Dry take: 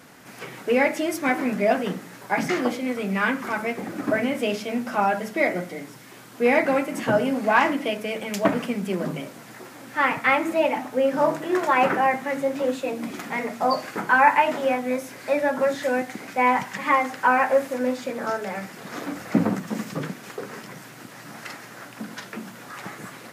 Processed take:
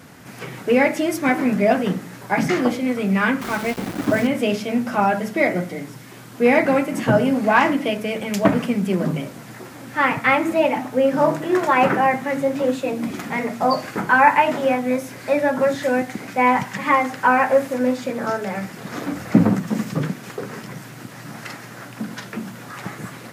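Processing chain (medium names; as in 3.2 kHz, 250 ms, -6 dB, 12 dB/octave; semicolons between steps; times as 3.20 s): peaking EQ 90 Hz +10 dB 2.2 oct; 3.41–4.27 s: small samples zeroed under -30.5 dBFS; trim +2.5 dB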